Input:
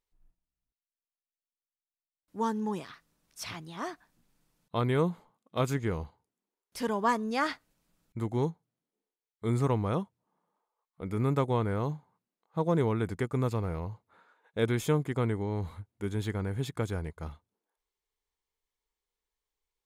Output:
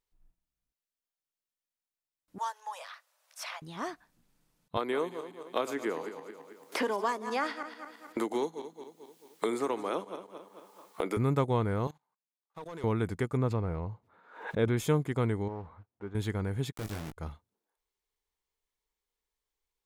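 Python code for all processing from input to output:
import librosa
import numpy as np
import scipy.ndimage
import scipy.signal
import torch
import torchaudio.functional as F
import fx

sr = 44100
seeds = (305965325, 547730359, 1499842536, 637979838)

y = fx.chain(x, sr, fx.steep_highpass(hz=520.0, slope=96),
    fx.band_squash(depth_pct=40), at=(2.38, 3.62))
y = fx.chain(y, sr, fx.reverse_delay_fb(ms=110, feedback_pct=47, wet_db=-12.0),
    fx.highpass(hz=290.0, slope=24),
    fx.band_squash(depth_pct=100), at=(4.77, 11.17))
y = fx.chain(y, sr, fx.highpass(hz=1300.0, slope=6),
    fx.leveller(passes=2),
    fx.level_steps(step_db=21), at=(11.87, 12.84))
y = fx.chain(y, sr, fx.lowpass(hz=2000.0, slope=6),
    fx.pre_swell(db_per_s=100.0), at=(13.37, 14.77))
y = fx.chain(y, sr, fx.block_float(bits=5),
    fx.cheby1_lowpass(hz=1100.0, order=2),
    fx.low_shelf(hz=340.0, db=-10.5), at=(15.48, 16.15))
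y = fx.chain(y, sr, fx.quant_dither(seeds[0], bits=6, dither='none'),
    fx.tube_stage(drive_db=34.0, bias=0.7),
    fx.doubler(ms=19.0, db=-6.5), at=(16.72, 17.17))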